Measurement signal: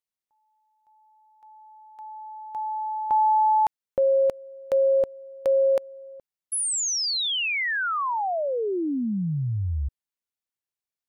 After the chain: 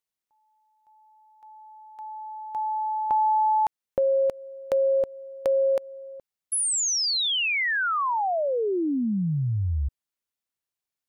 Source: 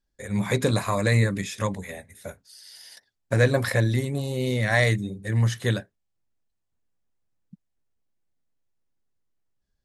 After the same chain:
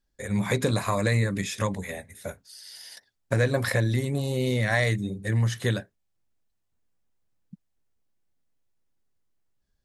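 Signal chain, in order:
downward compressor 2 to 1, threshold −25 dBFS
level +2 dB

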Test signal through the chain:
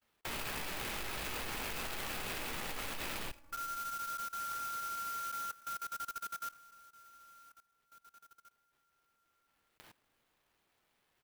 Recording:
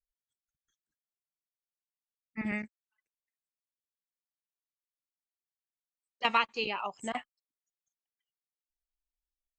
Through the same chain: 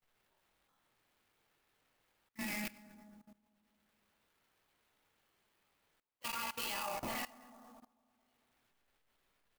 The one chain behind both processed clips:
loose part that buzzes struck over −51 dBFS, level −31 dBFS
first-order pre-emphasis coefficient 0.8
comb filter 3.5 ms, depth 87%
reversed playback
downward compressor 16 to 1, threshold −46 dBFS
reversed playback
chorus effect 0.45 Hz, delay 16 ms, depth 6.8 ms
bucket-brigade delay 222 ms, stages 2,048, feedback 42%, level −8 dB
rectangular room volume 190 cubic metres, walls mixed, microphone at 0.81 metres
output level in coarse steps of 19 dB
bad sample-rate conversion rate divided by 6×, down none, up hold
converter with an unsteady clock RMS 0.037 ms
level +17.5 dB

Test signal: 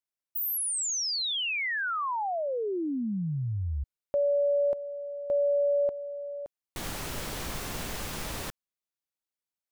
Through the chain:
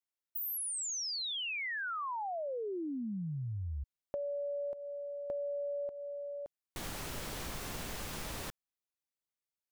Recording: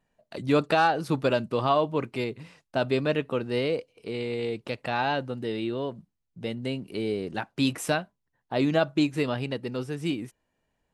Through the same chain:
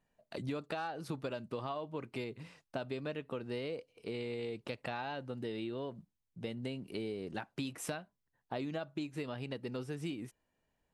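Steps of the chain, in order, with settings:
downward compressor 10 to 1, threshold −31 dBFS
level −4.5 dB

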